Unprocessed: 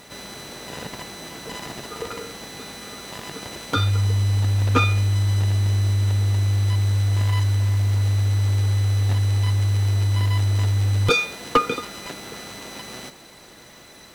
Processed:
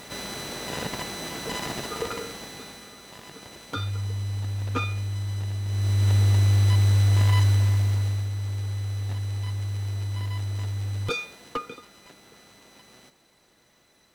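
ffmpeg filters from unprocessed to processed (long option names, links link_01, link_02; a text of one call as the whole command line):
ffmpeg -i in.wav -af "volume=13dB,afade=type=out:start_time=1.78:duration=1.15:silence=0.251189,afade=type=in:start_time=5.66:duration=0.49:silence=0.298538,afade=type=out:start_time=7.46:duration=0.84:silence=0.298538,afade=type=out:start_time=11.02:duration=0.76:silence=0.473151" out.wav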